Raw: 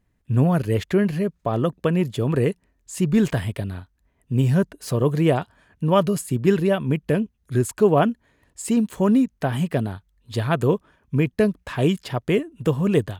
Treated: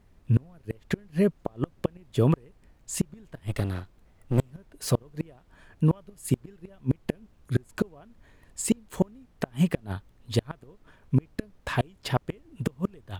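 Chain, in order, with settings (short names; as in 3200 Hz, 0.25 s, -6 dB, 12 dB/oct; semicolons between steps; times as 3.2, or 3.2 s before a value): 3.47–4.53 minimum comb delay 1.5 ms; flipped gate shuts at -13 dBFS, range -35 dB; added noise brown -58 dBFS; gain +1.5 dB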